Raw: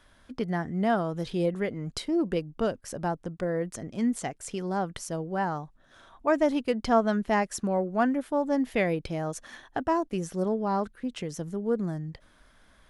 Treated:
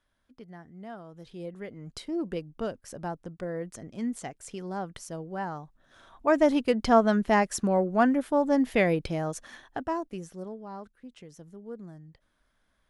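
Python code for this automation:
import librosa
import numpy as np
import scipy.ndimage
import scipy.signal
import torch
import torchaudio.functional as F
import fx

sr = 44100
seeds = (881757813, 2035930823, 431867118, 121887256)

y = fx.gain(x, sr, db=fx.line((0.99, -17.0), (2.13, -5.0), (5.59, -5.0), (6.45, 2.5), (9.01, 2.5), (10.09, -6.0), (10.61, -13.5)))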